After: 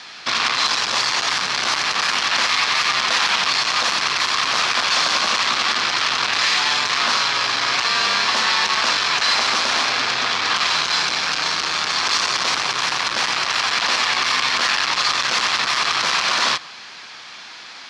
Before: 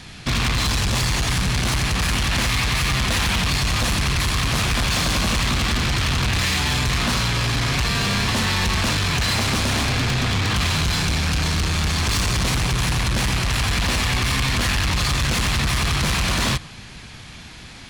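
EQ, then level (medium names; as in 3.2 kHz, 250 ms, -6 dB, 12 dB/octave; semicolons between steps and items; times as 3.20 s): high-pass 470 Hz 12 dB/octave; resonant low-pass 5.2 kHz, resonance Q 2; peaking EQ 1.2 kHz +7 dB 1.3 oct; 0.0 dB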